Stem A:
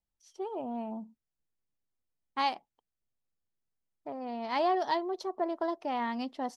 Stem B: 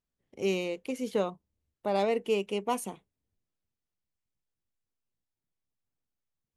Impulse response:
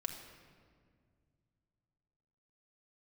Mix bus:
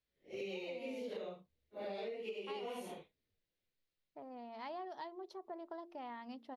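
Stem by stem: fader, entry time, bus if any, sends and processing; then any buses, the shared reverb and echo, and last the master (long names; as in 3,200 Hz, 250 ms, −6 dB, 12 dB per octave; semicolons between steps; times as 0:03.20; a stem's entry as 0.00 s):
−11.0 dB, 0.10 s, no send, parametric band 7,300 Hz −7.5 dB 0.82 octaves; hum removal 57.49 Hz, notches 8
−4.0 dB, 0.00 s, no send, random phases in long frames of 200 ms; octave-band graphic EQ 500/1,000/2,000/4,000/8,000 Hz +9/−5/+8/+10/−8 dB; downward compressor, threshold −27 dBFS, peak gain reduction 12 dB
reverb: not used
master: downward compressor 2.5 to 1, threshold −45 dBFS, peak gain reduction 11 dB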